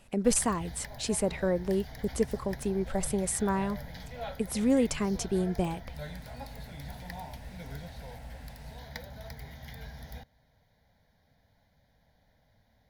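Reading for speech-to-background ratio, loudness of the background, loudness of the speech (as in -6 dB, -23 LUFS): 13.5 dB, -44.0 LUFS, -30.5 LUFS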